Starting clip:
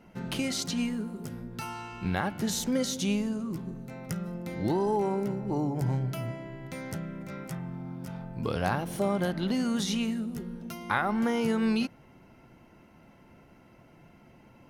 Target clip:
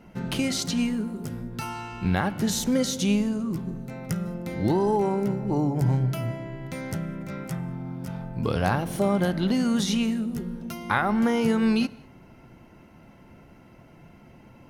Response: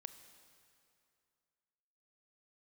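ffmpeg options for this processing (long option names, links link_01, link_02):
-filter_complex "[0:a]asplit=2[link_01][link_02];[1:a]atrim=start_sample=2205,afade=type=out:start_time=0.27:duration=0.01,atrim=end_sample=12348,lowshelf=frequency=260:gain=8.5[link_03];[link_02][link_03]afir=irnorm=-1:irlink=0,volume=-0.5dB[link_04];[link_01][link_04]amix=inputs=2:normalize=0"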